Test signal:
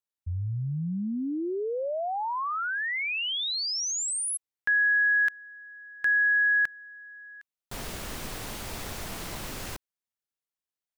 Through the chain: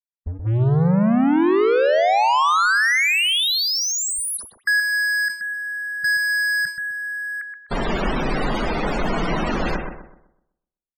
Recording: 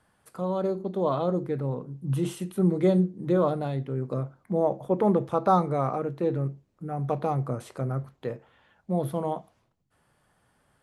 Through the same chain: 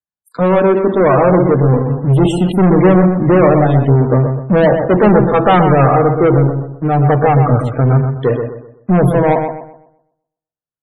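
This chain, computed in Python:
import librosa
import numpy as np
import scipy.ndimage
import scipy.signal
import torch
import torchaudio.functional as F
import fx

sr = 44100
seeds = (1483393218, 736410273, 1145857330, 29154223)

p1 = fx.noise_reduce_blind(x, sr, reduce_db=28)
p2 = fx.leveller(p1, sr, passes=5)
p3 = p2 + fx.echo_filtered(p2, sr, ms=126, feedback_pct=35, hz=2600.0, wet_db=-6, dry=0)
p4 = fx.spec_topn(p3, sr, count=64)
p5 = fx.high_shelf(p4, sr, hz=5800.0, db=-10.0)
p6 = fx.sustainer(p5, sr, db_per_s=140.0)
y = p6 * librosa.db_to_amplitude(4.0)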